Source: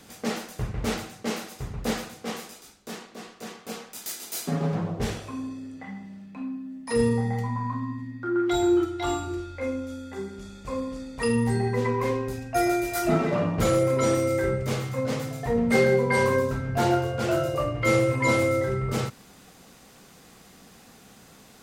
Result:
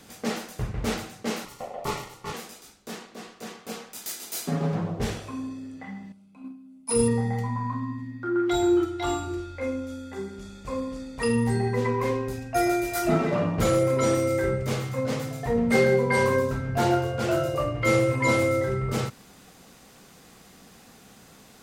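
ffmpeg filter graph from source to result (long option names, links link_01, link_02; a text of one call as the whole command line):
ffmpeg -i in.wav -filter_complex "[0:a]asettb=1/sr,asplit=3[link_01][link_02][link_03];[link_01]atrim=end=1.454[link_04];[link_02]atrim=start=1.45:end=2.34,asetpts=PTS-STARTPTS,afade=type=in:duration=0.004:curve=qsin,afade=type=out:start_time=0.886:duration=0.004:curve=qsin,equalizer=frequency=1000:width_type=o:width=0.91:gain=5,aeval=exprs='val(0)*sin(2*PI*640*n/s)':channel_layout=same,asuperstop=centerf=1600:order=4:qfactor=4.8[link_05];[link_03]atrim=start=2.336[link_06];[link_04][link_05]acrossfade=duration=0.004:curve1=hsin:curve2=qsin[link_07];[link_07][link_06]acrossfade=duration=0.004:curve1=qsin:curve2=hsin,asettb=1/sr,asplit=3[link_08][link_09][link_10];[link_08]atrim=end=6.124[link_11];[link_09]atrim=start=6.12:end=7.08,asetpts=PTS-STARTPTS,afade=type=in:duration=0.004:curve=qsin,afade=type=out:start_time=0.956:duration=0.004:curve=qsin,asuperstop=centerf=1800:order=4:qfactor=4.4,equalizer=frequency=10000:width=1.5:gain=12.5,agate=range=-11dB:threshold=-32dB:ratio=16:release=100:detection=peak[link_12];[link_10]atrim=start=7.076[link_13];[link_11][link_12]acrossfade=duration=0.004:curve1=hsin:curve2=qsin[link_14];[link_14][link_13]acrossfade=duration=0.004:curve1=qsin:curve2=hsin" out.wav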